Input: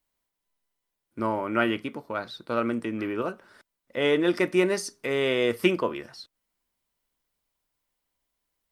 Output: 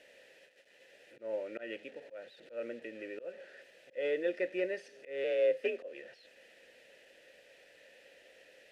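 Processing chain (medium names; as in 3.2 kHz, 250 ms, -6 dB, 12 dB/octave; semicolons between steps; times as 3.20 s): one-bit delta coder 64 kbps, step -35.5 dBFS; 5.24–5.93 s: frequency shift +52 Hz; vowel filter e; slow attack 154 ms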